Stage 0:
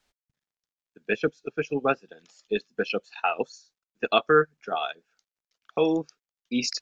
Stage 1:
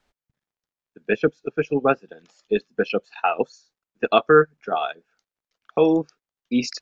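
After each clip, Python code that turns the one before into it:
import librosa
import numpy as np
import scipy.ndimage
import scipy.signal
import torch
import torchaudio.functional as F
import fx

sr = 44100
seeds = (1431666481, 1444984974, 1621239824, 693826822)

y = fx.high_shelf(x, sr, hz=2600.0, db=-10.5)
y = y * librosa.db_to_amplitude(6.0)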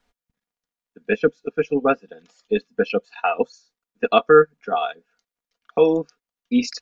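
y = x + 0.56 * np.pad(x, (int(4.2 * sr / 1000.0), 0))[:len(x)]
y = y * librosa.db_to_amplitude(-1.0)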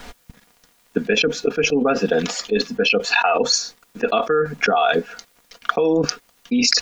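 y = fx.env_flatten(x, sr, amount_pct=100)
y = y * librosa.db_to_amplitude(-8.0)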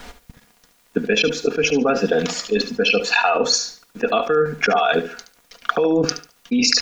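y = fx.echo_feedback(x, sr, ms=72, feedback_pct=23, wet_db=-11)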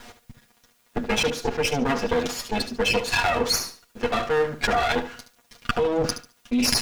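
y = fx.lower_of_two(x, sr, delay_ms=8.4)
y = y * librosa.db_to_amplitude(-3.5)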